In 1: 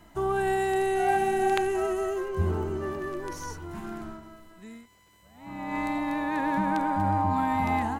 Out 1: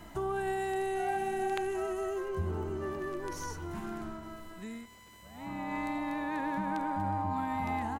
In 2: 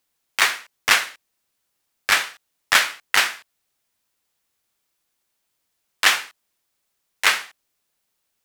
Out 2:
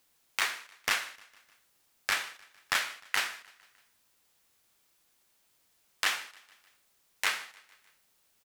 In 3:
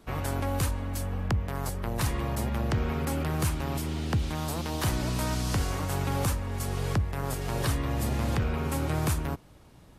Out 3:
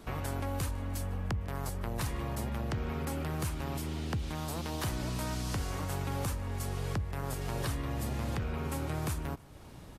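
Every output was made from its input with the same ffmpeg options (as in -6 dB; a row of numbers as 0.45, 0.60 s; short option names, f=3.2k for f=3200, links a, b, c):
-filter_complex "[0:a]acompressor=threshold=-45dB:ratio=2,asplit=2[a][b];[b]aecho=0:1:152|304|456|608:0.0708|0.0404|0.023|0.0131[c];[a][c]amix=inputs=2:normalize=0,volume=4.5dB"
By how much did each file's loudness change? -7.0, -12.5, -6.0 LU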